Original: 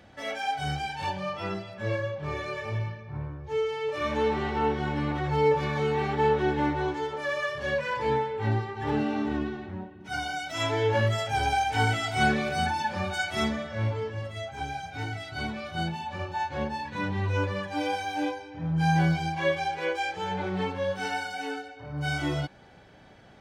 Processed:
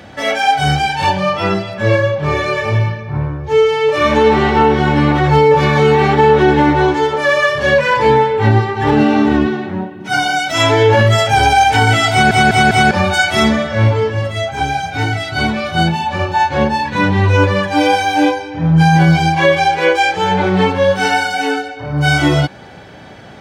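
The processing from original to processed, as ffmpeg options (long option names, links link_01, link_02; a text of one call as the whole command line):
ffmpeg -i in.wav -filter_complex "[0:a]asettb=1/sr,asplit=3[link_01][link_02][link_03];[link_01]atrim=end=9.464[link_04];[link_02]atrim=start=9.46:end=10.49,asetpts=PTS-STARTPTS,afade=type=in:duration=0.004:curve=qsin,afade=type=out:start_time=1.026:duration=0.004:curve=qsin,highpass=frequency=110:width=0.5412,highpass=frequency=110:width=1.3066[link_05];[link_03]atrim=start=10.486[link_06];[link_04][link_05]acrossfade=duration=0.004:curve1=hsin:curve2=qsin[link_07];[link_07][link_06]acrossfade=duration=0.004:curve1=qsin:curve2=hsin,asplit=5[link_08][link_09][link_10][link_11][link_12];[link_08]atrim=end=12.312[link_13];[link_09]atrim=start=12.108:end=12.312[link_14];[link_10]atrim=start=12.108:end=12.312[link_15];[link_11]atrim=start=12.108:end=12.312[link_16];[link_12]atrim=start=12.908[link_17];[link_13][link_14]acrossfade=duration=0.004:curve1=hsin:curve2=hsin[link_18];[link_18][link_15]acrossfade=duration=0.004:curve1=hsin:curve2=hsin[link_19];[link_19][link_16]acrossfade=duration=0.004:curve1=hsin:curve2=hsin[link_20];[link_20][link_17]acrossfade=duration=0.004:curve1=hsin:curve2=hsin,highpass=67,alimiter=level_in=18dB:limit=-1dB:release=50:level=0:latency=1,volume=-1dB" out.wav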